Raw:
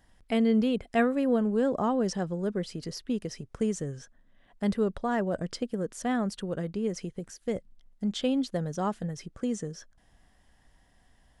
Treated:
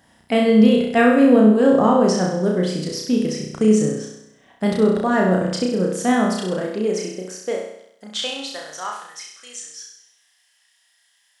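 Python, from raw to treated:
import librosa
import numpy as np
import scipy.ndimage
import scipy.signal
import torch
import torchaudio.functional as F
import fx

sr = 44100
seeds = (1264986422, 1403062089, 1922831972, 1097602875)

y = fx.room_flutter(x, sr, wall_m=5.6, rt60_s=0.79)
y = fx.filter_sweep_highpass(y, sr, from_hz=130.0, to_hz=2600.0, start_s=5.9, end_s=9.61, q=0.77)
y = y * librosa.db_to_amplitude(8.5)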